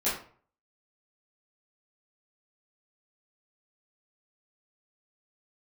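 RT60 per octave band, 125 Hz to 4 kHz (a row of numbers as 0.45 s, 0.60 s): 0.60 s, 0.45 s, 0.45 s, 0.45 s, 0.40 s, 0.30 s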